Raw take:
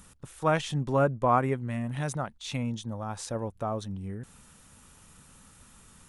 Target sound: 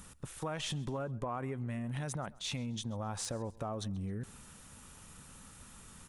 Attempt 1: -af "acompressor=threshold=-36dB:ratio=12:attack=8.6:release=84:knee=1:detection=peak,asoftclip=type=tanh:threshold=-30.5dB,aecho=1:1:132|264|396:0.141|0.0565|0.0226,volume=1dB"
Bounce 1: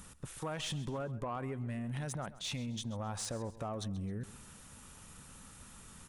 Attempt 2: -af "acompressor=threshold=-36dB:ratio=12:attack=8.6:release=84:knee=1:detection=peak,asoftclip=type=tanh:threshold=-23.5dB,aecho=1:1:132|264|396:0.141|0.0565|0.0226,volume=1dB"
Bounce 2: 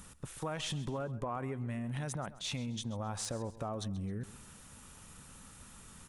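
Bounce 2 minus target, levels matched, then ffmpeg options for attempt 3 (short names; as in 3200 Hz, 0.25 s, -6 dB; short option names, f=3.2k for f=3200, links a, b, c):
echo-to-direct +6 dB
-af "acompressor=threshold=-36dB:ratio=12:attack=8.6:release=84:knee=1:detection=peak,asoftclip=type=tanh:threshold=-23.5dB,aecho=1:1:132|264|396:0.0708|0.0283|0.0113,volume=1dB"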